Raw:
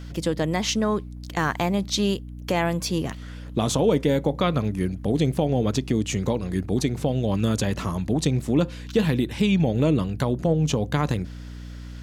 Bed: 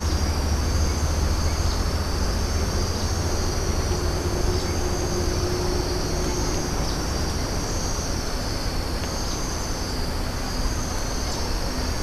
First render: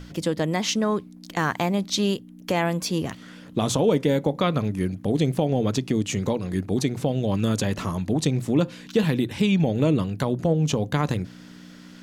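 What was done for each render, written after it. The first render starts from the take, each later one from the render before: notches 60/120 Hz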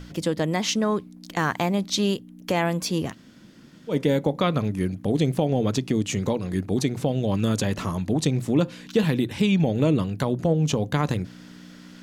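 3.13–3.92 room tone, crossfade 0.10 s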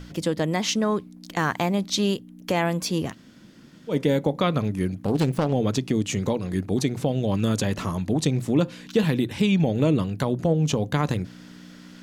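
5.05–5.53 self-modulated delay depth 0.35 ms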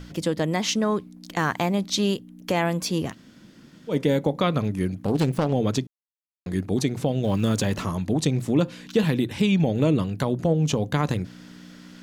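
5.87–6.46 mute; 7.24–7.81 G.711 law mismatch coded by mu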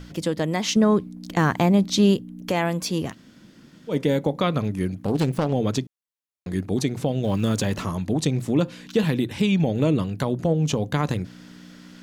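0.76–2.49 low shelf 500 Hz +8 dB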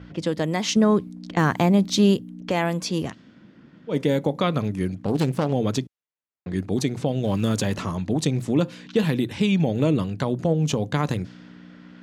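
HPF 63 Hz; low-pass opened by the level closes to 2100 Hz, open at -19.5 dBFS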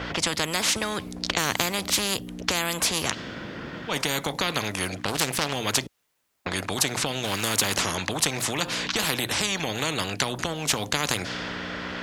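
in parallel at +1 dB: compressor, threshold -28 dBFS, peak gain reduction 14 dB; on the sum: spectral compressor 4:1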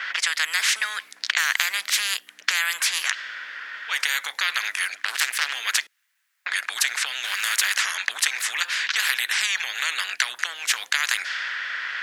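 resonant high-pass 1700 Hz, resonance Q 2.9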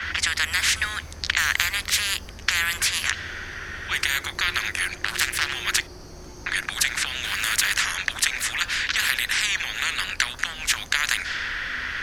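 add bed -17 dB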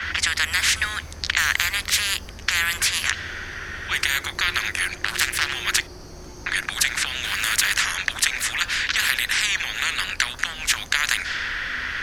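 gain +1.5 dB; limiter -2 dBFS, peak gain reduction 2 dB

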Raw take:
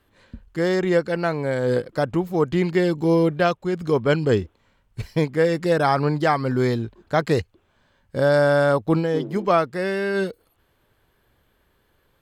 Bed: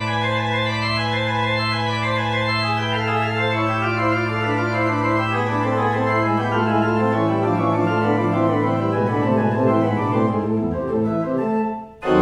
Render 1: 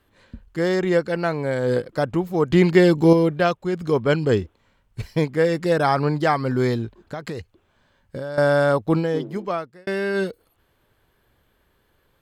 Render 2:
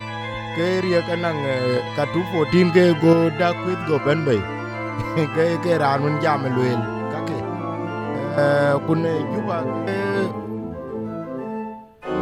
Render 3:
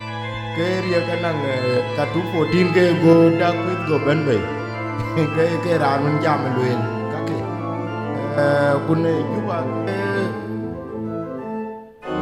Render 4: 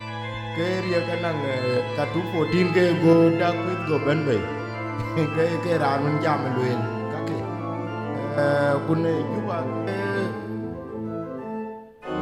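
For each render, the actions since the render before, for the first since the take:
2.5–3.13 gain +5.5 dB; 7–8.38 compressor 10:1, threshold -26 dBFS; 9.07–9.87 fade out
add bed -8 dB
FDN reverb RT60 1.6 s, high-frequency decay 0.95×, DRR 8 dB
gain -4 dB

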